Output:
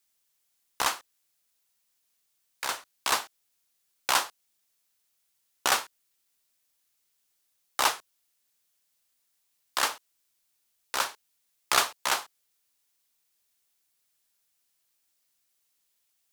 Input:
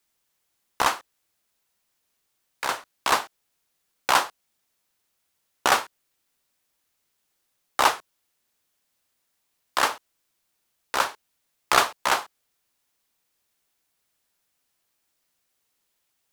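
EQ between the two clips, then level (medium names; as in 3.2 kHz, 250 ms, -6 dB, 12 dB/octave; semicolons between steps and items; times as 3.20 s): treble shelf 2.5 kHz +9.5 dB; -8.0 dB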